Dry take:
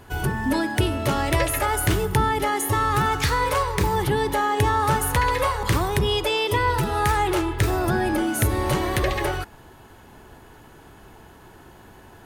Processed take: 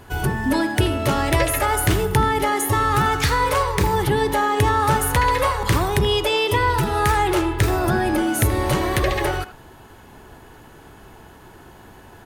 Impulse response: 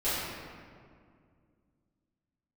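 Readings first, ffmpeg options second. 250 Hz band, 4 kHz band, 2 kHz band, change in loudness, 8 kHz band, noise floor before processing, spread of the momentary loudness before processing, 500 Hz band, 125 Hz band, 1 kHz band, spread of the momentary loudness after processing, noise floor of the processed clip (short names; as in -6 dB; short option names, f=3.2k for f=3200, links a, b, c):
+3.0 dB, +2.5 dB, +2.5 dB, +2.5 dB, +2.5 dB, -48 dBFS, 3 LU, +3.0 dB, +2.5 dB, +2.5 dB, 3 LU, -45 dBFS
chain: -filter_complex "[0:a]asplit=2[a][b];[b]adelay=80,highpass=300,lowpass=3.4k,asoftclip=type=hard:threshold=-18dB,volume=-12dB[c];[a][c]amix=inputs=2:normalize=0,volume=2.5dB"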